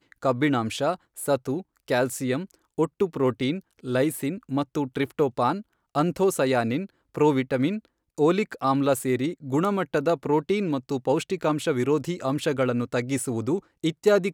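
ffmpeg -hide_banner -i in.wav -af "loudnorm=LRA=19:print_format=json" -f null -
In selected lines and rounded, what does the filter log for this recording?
"input_i" : "-25.6",
"input_tp" : "-8.0",
"input_lra" : "2.6",
"input_thresh" : "-35.6",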